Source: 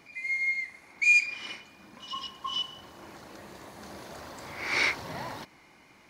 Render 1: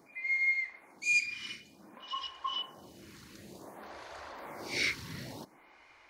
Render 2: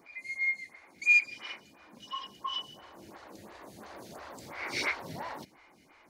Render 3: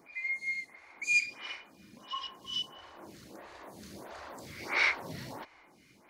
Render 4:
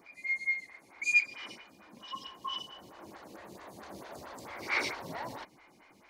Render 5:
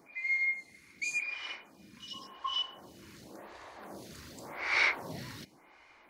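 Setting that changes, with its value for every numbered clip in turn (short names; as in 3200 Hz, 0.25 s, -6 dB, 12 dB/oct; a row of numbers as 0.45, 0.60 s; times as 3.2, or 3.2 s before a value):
photocell phaser, rate: 0.55, 2.9, 1.5, 4.5, 0.9 Hz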